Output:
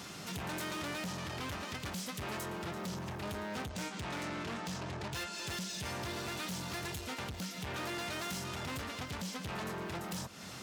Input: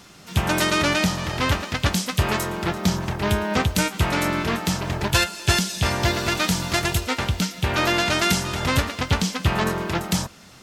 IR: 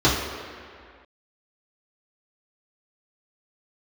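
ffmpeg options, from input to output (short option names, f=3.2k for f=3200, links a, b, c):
-filter_complex "[0:a]asettb=1/sr,asplit=3[a][b][c];[a]atrim=end=3.694[d];[b]atrim=start=3.69:end=5.8,asetpts=PTS-STARTPTS,afade=t=in:d=0.004:c=qsin,afade=t=out:st=2.106:d=0.004:c=qsin,lowpass=f=7.9k:w=0.5412,lowpass=f=7.9k:w=1.3066[e];[c]atrim=start=5.796[f];[d][e]acrossfade=d=0.004:c1=hsin:c2=qsin[g];[g][f]acrossfade=d=0.004:c1=qsin:c2=hsin,volume=22dB,asoftclip=hard,volume=-22dB,acompressor=threshold=-36dB:ratio=10,asoftclip=type=tanh:threshold=-38dB,highpass=76,volume=2dB"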